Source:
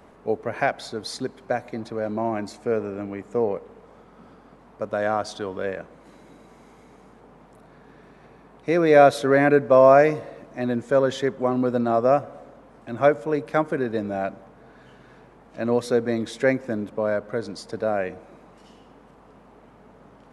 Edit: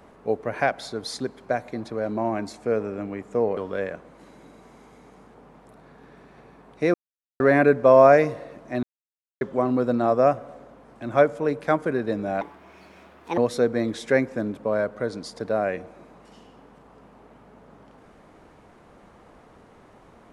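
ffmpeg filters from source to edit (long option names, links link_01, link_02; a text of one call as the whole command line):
ffmpeg -i in.wav -filter_complex "[0:a]asplit=8[link_01][link_02][link_03][link_04][link_05][link_06][link_07][link_08];[link_01]atrim=end=3.572[link_09];[link_02]atrim=start=5.428:end=8.8,asetpts=PTS-STARTPTS,afade=type=out:start_time=3.368:duration=0.004:curve=hsin[link_10];[link_03]atrim=start=8.8:end=9.26,asetpts=PTS-STARTPTS,volume=0[link_11];[link_04]atrim=start=9.26:end=10.69,asetpts=PTS-STARTPTS,afade=type=in:duration=0.004:curve=hsin,afade=type=out:start_time=1.426:duration=0.004:curve=hsin[link_12];[link_05]atrim=start=10.69:end=11.27,asetpts=PTS-STARTPTS,volume=0[link_13];[link_06]atrim=start=11.27:end=14.274,asetpts=PTS-STARTPTS,afade=type=in:duration=0.004:curve=hsin[link_14];[link_07]atrim=start=14.27:end=15.7,asetpts=PTS-STARTPTS,asetrate=65268,aresample=44100,atrim=end_sample=42610,asetpts=PTS-STARTPTS[link_15];[link_08]atrim=start=15.696[link_16];[link_10][link_11][link_12][link_13][link_14]concat=n=5:v=0:a=1[link_17];[link_09][link_17]acrossfade=duration=0.004:curve1=hsin:curve2=hsin[link_18];[link_18][link_15]acrossfade=duration=0.004:curve1=hsin:curve2=hsin[link_19];[link_19][link_16]acrossfade=duration=0.004:curve1=hsin:curve2=hsin" out.wav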